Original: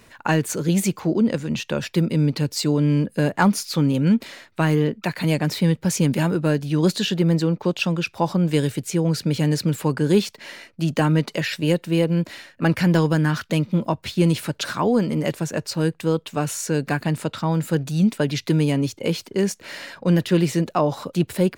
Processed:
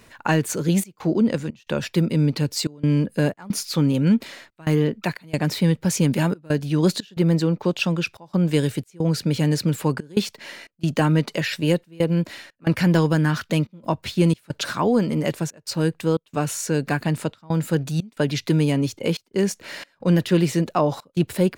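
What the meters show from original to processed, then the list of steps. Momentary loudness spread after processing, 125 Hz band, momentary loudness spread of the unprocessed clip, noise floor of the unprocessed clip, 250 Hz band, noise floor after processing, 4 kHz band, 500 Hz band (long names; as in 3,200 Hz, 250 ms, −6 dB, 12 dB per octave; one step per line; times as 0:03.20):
7 LU, −0.5 dB, 6 LU, −55 dBFS, −1.0 dB, −61 dBFS, −1.0 dB, −1.0 dB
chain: gate pattern "xxxxx.xxx.x" 90 BPM −24 dB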